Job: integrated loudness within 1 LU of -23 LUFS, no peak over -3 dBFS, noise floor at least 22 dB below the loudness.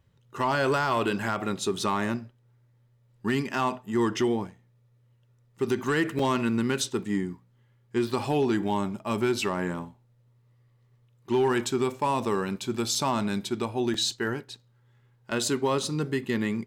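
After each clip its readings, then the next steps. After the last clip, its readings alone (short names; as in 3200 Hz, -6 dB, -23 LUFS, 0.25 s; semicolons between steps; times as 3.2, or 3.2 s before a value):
clipped 0.3%; flat tops at -17.5 dBFS; dropouts 3; longest dropout 3.2 ms; loudness -28.0 LUFS; peak -17.5 dBFS; loudness target -23.0 LUFS
-> clip repair -17.5 dBFS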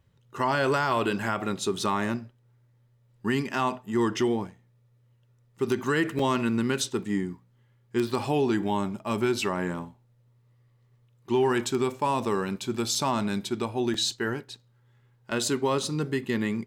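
clipped 0.0%; dropouts 3; longest dropout 3.2 ms
-> interpolate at 6.19/12.95/13.94, 3.2 ms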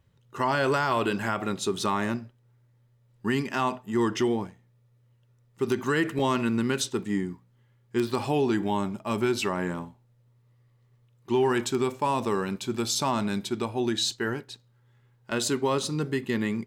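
dropouts 0; loudness -27.5 LUFS; peak -12.5 dBFS; loudness target -23.0 LUFS
-> gain +4.5 dB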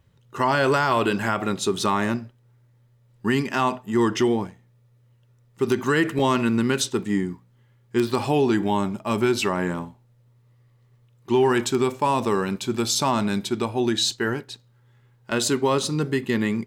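loudness -23.0 LUFS; peak -8.0 dBFS; noise floor -59 dBFS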